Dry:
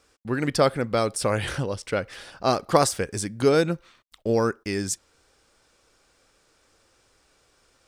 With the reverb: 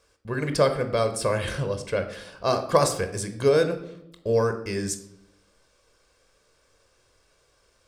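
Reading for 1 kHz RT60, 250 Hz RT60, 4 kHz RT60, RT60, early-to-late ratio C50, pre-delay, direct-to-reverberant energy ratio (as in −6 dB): 0.70 s, 0.95 s, 0.55 s, 0.80 s, 11.5 dB, 22 ms, 7.5 dB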